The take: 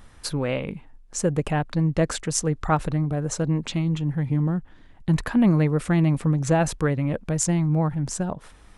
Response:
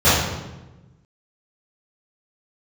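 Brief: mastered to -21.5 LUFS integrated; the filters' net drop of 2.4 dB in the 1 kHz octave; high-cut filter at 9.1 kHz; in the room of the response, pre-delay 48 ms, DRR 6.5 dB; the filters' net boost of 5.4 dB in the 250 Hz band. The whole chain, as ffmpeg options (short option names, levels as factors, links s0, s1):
-filter_complex "[0:a]lowpass=9100,equalizer=f=250:t=o:g=8.5,equalizer=f=1000:t=o:g=-4,asplit=2[s0][s1];[1:a]atrim=start_sample=2205,adelay=48[s2];[s1][s2]afir=irnorm=-1:irlink=0,volume=0.0266[s3];[s0][s3]amix=inputs=2:normalize=0,volume=0.668"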